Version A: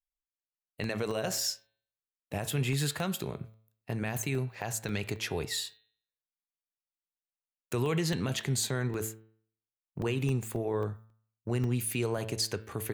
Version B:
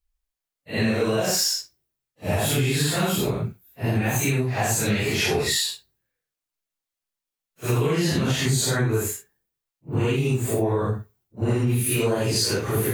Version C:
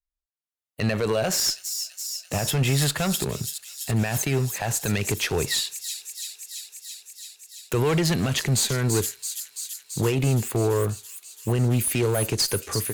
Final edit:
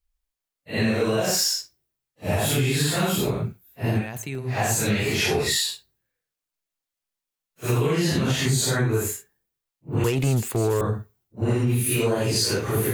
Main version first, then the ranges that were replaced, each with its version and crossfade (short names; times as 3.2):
B
4.03–4.45 from A, crossfade 0.10 s
10.04–10.81 from C